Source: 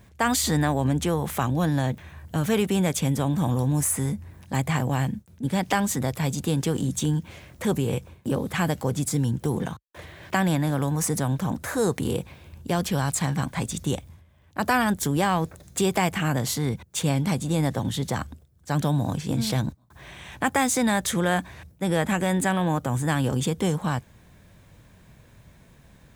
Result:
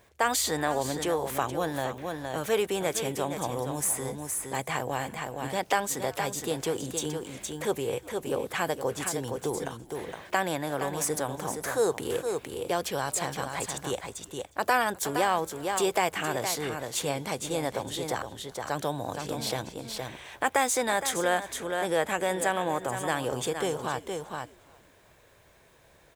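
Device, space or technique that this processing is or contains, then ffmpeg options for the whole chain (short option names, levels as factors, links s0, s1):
ducked delay: -filter_complex "[0:a]lowshelf=f=300:t=q:w=1.5:g=-11,asplit=3[s0][s1][s2];[s1]adelay=359,afreqshift=-94,volume=0.0668[s3];[s2]adelay=718,afreqshift=-188,volume=0.0221[s4];[s0][s3][s4]amix=inputs=3:normalize=0,asplit=3[s5][s6][s7];[s6]adelay=466,volume=0.596[s8];[s7]apad=whole_len=1205665[s9];[s8][s9]sidechaincompress=threshold=0.0447:ratio=8:attack=7.9:release=277[s10];[s5][s10]amix=inputs=2:normalize=0,volume=0.75"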